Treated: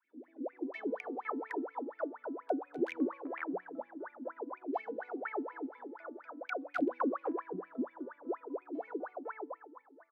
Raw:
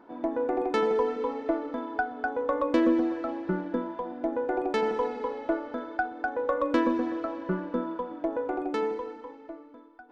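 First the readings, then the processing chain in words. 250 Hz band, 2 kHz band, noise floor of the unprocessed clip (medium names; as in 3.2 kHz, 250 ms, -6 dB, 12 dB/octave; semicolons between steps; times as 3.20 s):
-9.5 dB, -9.5 dB, -50 dBFS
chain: integer overflow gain 15 dB; three bands offset in time highs, lows, mids 40/510 ms, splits 430/2100 Hz; wah-wah 4.2 Hz 260–2400 Hz, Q 21; trim +7.5 dB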